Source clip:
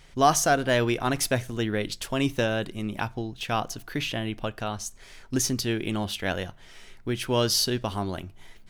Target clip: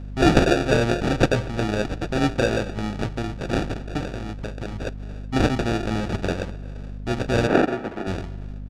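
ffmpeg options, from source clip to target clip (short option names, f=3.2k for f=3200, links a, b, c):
-filter_complex "[0:a]highshelf=f=4.1k:g=7.5,asettb=1/sr,asplit=3[a][b][c];[a]atrim=end=4.004[d];[b]atrim=start=4:end=4.87,asetpts=PTS-STARTPTS,afade=t=in:d=0.004:c=qsin,afade=t=out:st=0.866:d=0.004:c=qsin,acompressor=threshold=-32dB:ratio=6[e];[c]atrim=start=4.866[f];[d][e]acrossfade=d=0.004:c1=hsin:c2=qsin[g];[g][f]acrossfade=d=0.004:c1=qsin:c2=hsin,bandreject=f=49.89:t=h:w=4,bandreject=f=99.78:t=h:w=4,bandreject=f=149.67:t=h:w=4,bandreject=f=199.56:t=h:w=4,bandreject=f=249.45:t=h:w=4,bandreject=f=299.34:t=h:w=4,bandreject=f=349.23:t=h:w=4,bandreject=f=399.12:t=h:w=4,bandreject=f=449.01:t=h:w=4,bandreject=f=498.9:t=h:w=4,bandreject=f=548.79:t=h:w=4,bandreject=f=598.68:t=h:w=4,bandreject=f=648.57:t=h:w=4,bandreject=f=698.46:t=h:w=4,bandreject=f=748.35:t=h:w=4,bandreject=f=798.24:t=h:w=4,bandreject=f=848.13:t=h:w=4,bandreject=f=898.02:t=h:w=4,bandreject=f=947.91:t=h:w=4,bandreject=f=997.8:t=h:w=4,bandreject=f=1.04769k:t=h:w=4,bandreject=f=1.09758k:t=h:w=4,bandreject=f=1.14747k:t=h:w=4,bandreject=f=1.19736k:t=h:w=4,bandreject=f=1.24725k:t=h:w=4,bandreject=f=1.29714k:t=h:w=4,bandreject=f=1.34703k:t=h:w=4,bandreject=f=1.39692k:t=h:w=4,bandreject=f=1.44681k:t=h:w=4,bandreject=f=1.4967k:t=h:w=4,bandreject=f=1.54659k:t=h:w=4,bandreject=f=1.59648k:t=h:w=4,bandreject=f=1.64637k:t=h:w=4,acrusher=samples=42:mix=1:aa=0.000001,lowpass=5.4k,asplit=2[h][i];[i]adelay=238,lowpass=f=3.4k:p=1,volume=-20.5dB,asplit=2[j][k];[k]adelay=238,lowpass=f=3.4k:p=1,volume=0.42,asplit=2[l][m];[m]adelay=238,lowpass=f=3.4k:p=1,volume=0.42[n];[h][j][l][n]amix=inputs=4:normalize=0,aeval=exprs='val(0)+0.0158*(sin(2*PI*50*n/s)+sin(2*PI*2*50*n/s)/2+sin(2*PI*3*50*n/s)/3+sin(2*PI*4*50*n/s)/4+sin(2*PI*5*50*n/s)/5)':c=same,asettb=1/sr,asplit=3[o][p][q];[o]atrim=end=7.474[r];[p]atrim=start=7.47:end=8.07,asetpts=PTS-STARTPTS,afade=t=in:d=0.004:c=qsin,afade=t=out:st=0.596:d=0.004:c=qsin,acrossover=split=190 2400:gain=0.141 1 0.224[s][t][u];[s][t][u]amix=inputs=3:normalize=0[v];[q]atrim=start=8.066[w];[r][v]acrossfade=d=0.004:c1=hsin:c2=qsin[x];[x][w]acrossfade=d=0.004:c1=qsin:c2=hsin,volume=3.5dB"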